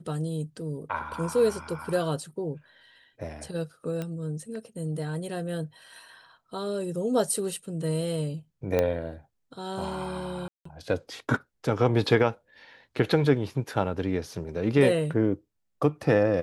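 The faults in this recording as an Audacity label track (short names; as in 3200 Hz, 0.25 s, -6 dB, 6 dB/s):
4.020000	4.020000	pop -20 dBFS
8.790000	8.790000	pop -12 dBFS
10.480000	10.650000	gap 0.174 s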